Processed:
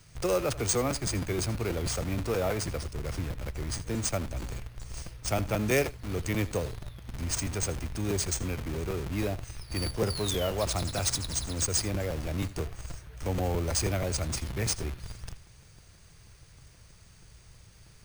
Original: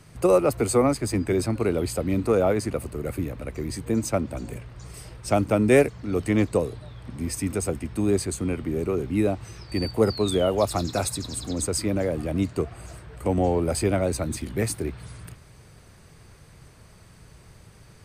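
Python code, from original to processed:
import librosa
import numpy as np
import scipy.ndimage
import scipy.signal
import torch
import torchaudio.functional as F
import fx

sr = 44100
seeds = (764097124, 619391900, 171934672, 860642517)

p1 = fx.peak_eq(x, sr, hz=1000.0, db=-7.0, octaves=2.4)
p2 = fx.schmitt(p1, sr, flips_db=-33.5)
p3 = p1 + (p2 * librosa.db_to_amplitude(-9.5))
p4 = fx.peak_eq(p3, sr, hz=250.0, db=-10.5, octaves=2.2)
p5 = np.repeat(p4[::3], 3)[:len(p4)]
p6 = p5 + fx.echo_single(p5, sr, ms=81, db=-18.5, dry=0)
y = fx.buffer_crackle(p6, sr, first_s=0.58, period_s=0.16, block=256, kind='repeat')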